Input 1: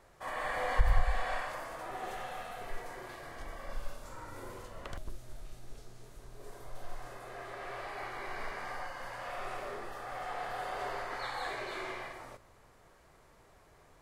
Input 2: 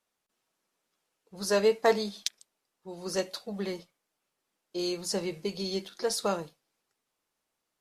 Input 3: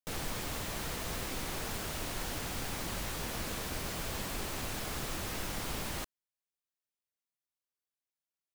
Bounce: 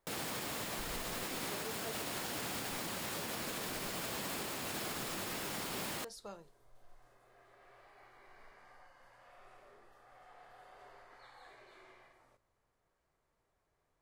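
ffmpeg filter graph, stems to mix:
ffmpeg -i stem1.wav -i stem2.wav -i stem3.wav -filter_complex "[0:a]volume=-19.5dB[link_01];[1:a]volume=-19.5dB[link_02];[2:a]highpass=160,bandreject=frequency=6000:width=19,volume=2.5dB[link_03];[link_01][link_02][link_03]amix=inputs=3:normalize=0,alimiter=level_in=6.5dB:limit=-24dB:level=0:latency=1:release=81,volume=-6.5dB" out.wav

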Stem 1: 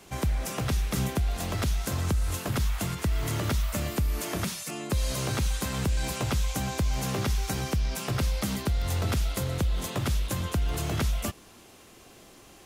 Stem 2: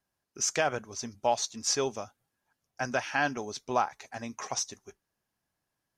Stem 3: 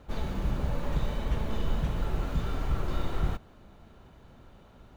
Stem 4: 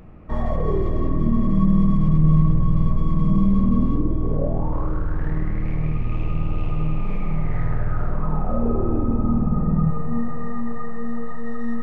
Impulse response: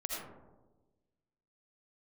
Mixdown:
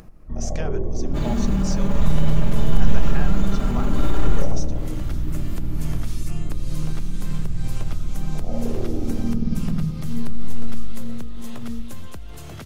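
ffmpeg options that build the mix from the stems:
-filter_complex "[0:a]acompressor=threshold=-27dB:ratio=6,adelay=1600,volume=-3.5dB,asplit=2[link_01][link_02];[link_02]volume=-20dB[link_03];[1:a]volume=0dB,asplit=2[link_04][link_05];[2:a]aecho=1:1:5:0.7,aeval=exprs='val(0)+0.0178*(sin(2*PI*60*n/s)+sin(2*PI*2*60*n/s)/2+sin(2*PI*3*60*n/s)/3+sin(2*PI*4*60*n/s)/4+sin(2*PI*5*60*n/s)/5)':channel_layout=same,adelay=1050,volume=2.5dB,asplit=2[link_06][link_07];[link_07]volume=-7dB[link_08];[3:a]afwtdn=0.0708,volume=-5.5dB,asplit=2[link_09][link_10];[link_10]volume=-9.5dB[link_11];[link_05]apad=whole_len=628791[link_12];[link_01][link_12]sidechaincompress=threshold=-41dB:ratio=8:attack=16:release=181[link_13];[link_13][link_04]amix=inputs=2:normalize=0,acompressor=threshold=-47dB:ratio=1.5,volume=0dB[link_14];[link_06][link_09]amix=inputs=2:normalize=0,equalizer=frequency=7100:width=5.2:gain=9.5,alimiter=limit=-17.5dB:level=0:latency=1:release=11,volume=0dB[link_15];[4:a]atrim=start_sample=2205[link_16];[link_03][link_08][link_11]amix=inputs=3:normalize=0[link_17];[link_17][link_16]afir=irnorm=-1:irlink=0[link_18];[link_14][link_15][link_18]amix=inputs=3:normalize=0,acompressor=mode=upward:threshold=-31dB:ratio=2.5"

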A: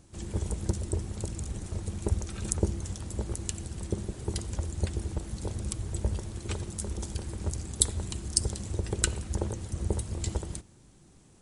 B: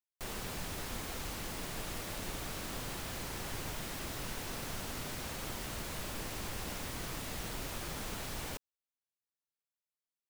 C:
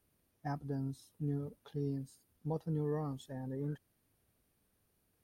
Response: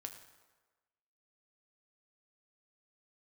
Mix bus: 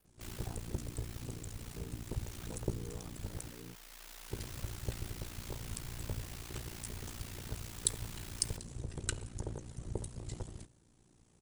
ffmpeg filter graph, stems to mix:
-filter_complex "[0:a]adelay=50,volume=-8.5dB,asplit=3[link_01][link_02][link_03];[link_01]atrim=end=3.51,asetpts=PTS-STARTPTS,afade=type=out:start_time=3.506:duration=0.004:curve=hsin[link_04];[link_02]atrim=start=3.51:end=4.3,asetpts=PTS-STARTPTS,volume=0[link_05];[link_03]atrim=start=4.3,asetpts=PTS-STARTPTS,afade=type=in:duration=0.004:curve=hsin[link_06];[link_04][link_05][link_06]concat=n=3:v=0:a=1,asplit=2[link_07][link_08];[link_08]volume=-10.5dB[link_09];[1:a]highpass=frequency=1300:poles=1,aeval=exprs='max(val(0),0)':channel_layout=same,volume=-1dB,asplit=2[link_10][link_11];[link_11]volume=-6dB[link_12];[2:a]volume=-9.5dB,asplit=2[link_13][link_14];[link_14]apad=whole_len=453836[link_15];[link_10][link_15]sidechaincompress=threshold=-51dB:ratio=8:attack=40:release=1110[link_16];[3:a]atrim=start_sample=2205[link_17];[link_09][link_12]amix=inputs=2:normalize=0[link_18];[link_18][link_17]afir=irnorm=-1:irlink=0[link_19];[link_07][link_16][link_13][link_19]amix=inputs=4:normalize=0,acompressor=mode=upward:threshold=-58dB:ratio=2.5,aeval=exprs='val(0)*sin(2*PI*29*n/s)':channel_layout=same"

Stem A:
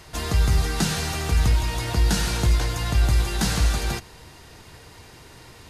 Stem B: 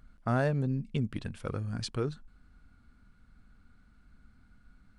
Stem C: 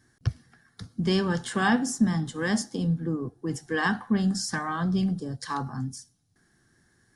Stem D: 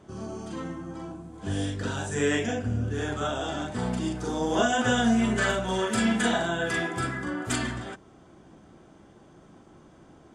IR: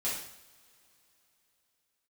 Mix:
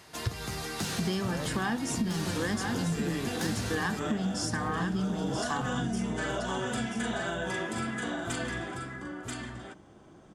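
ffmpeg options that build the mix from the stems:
-filter_complex "[0:a]highpass=180,asoftclip=type=tanh:threshold=-19.5dB,volume=-6dB[link_01];[1:a]adelay=950,volume=-7dB[link_02];[2:a]volume=-0.5dB,asplit=2[link_03][link_04];[link_04]volume=-7.5dB[link_05];[3:a]acompressor=threshold=-30dB:ratio=2,adelay=800,volume=-3dB,asplit=2[link_06][link_07];[link_07]volume=-3.5dB[link_08];[link_05][link_08]amix=inputs=2:normalize=0,aecho=0:1:983:1[link_09];[link_01][link_02][link_03][link_06][link_09]amix=inputs=5:normalize=0,acompressor=threshold=-27dB:ratio=6"

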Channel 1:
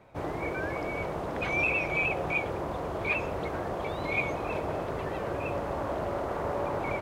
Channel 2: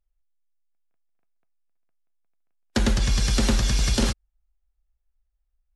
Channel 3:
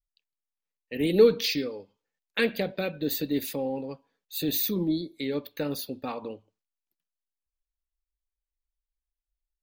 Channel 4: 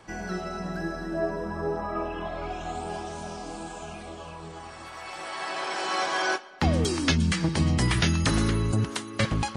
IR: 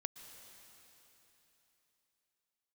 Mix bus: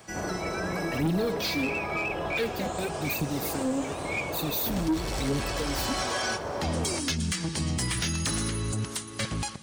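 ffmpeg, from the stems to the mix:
-filter_complex "[0:a]aeval=exprs='clip(val(0),-1,0.0668)':channel_layout=same,volume=0dB[link_01];[1:a]volume=25dB,asoftclip=hard,volume=-25dB,adelay=1900,volume=-2.5dB[link_02];[2:a]bass=frequency=250:gain=12,treble=frequency=4000:gain=3,acrusher=bits=5:mix=0:aa=0.5,aphaser=in_gain=1:out_gain=1:delay=4.1:decay=0.75:speed=0.94:type=triangular,volume=-4.5dB,asplit=2[link_03][link_04];[link_04]volume=-13dB[link_05];[3:a]aemphasis=mode=production:type=75kf,volume=-4.5dB,asplit=2[link_06][link_07];[link_07]volume=-5.5dB[link_08];[4:a]atrim=start_sample=2205[link_09];[link_05][link_08]amix=inputs=2:normalize=0[link_10];[link_10][link_09]afir=irnorm=-1:irlink=0[link_11];[link_01][link_02][link_03][link_06][link_11]amix=inputs=5:normalize=0,highpass=43,asoftclip=type=tanh:threshold=-15.5dB,alimiter=limit=-21dB:level=0:latency=1:release=372"

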